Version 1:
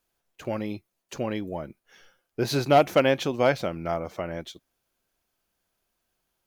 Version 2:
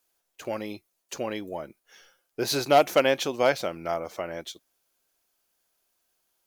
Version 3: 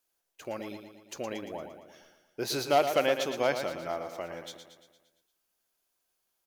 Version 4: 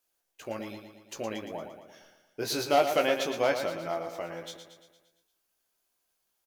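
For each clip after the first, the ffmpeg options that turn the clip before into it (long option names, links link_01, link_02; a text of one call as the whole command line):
ffmpeg -i in.wav -af "bass=frequency=250:gain=-10,treble=frequency=4000:gain=6" out.wav
ffmpeg -i in.wav -af "aecho=1:1:115|230|345|460|575|690|805:0.376|0.21|0.118|0.066|0.037|0.0207|0.0116,volume=-5.5dB" out.wav
ffmpeg -i in.wav -filter_complex "[0:a]asplit=2[link_01][link_02];[link_02]adelay=18,volume=-5.5dB[link_03];[link_01][link_03]amix=inputs=2:normalize=0" out.wav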